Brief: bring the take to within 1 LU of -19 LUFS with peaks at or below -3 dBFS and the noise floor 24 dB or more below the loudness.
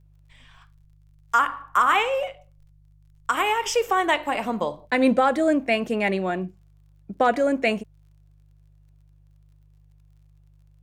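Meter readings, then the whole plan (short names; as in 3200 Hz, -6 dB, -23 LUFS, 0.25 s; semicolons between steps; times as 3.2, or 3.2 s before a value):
ticks 29/s; hum 50 Hz; harmonics up to 150 Hz; hum level -53 dBFS; loudness -23.0 LUFS; peak -9.0 dBFS; loudness target -19.0 LUFS
-> de-click; de-hum 50 Hz, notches 3; gain +4 dB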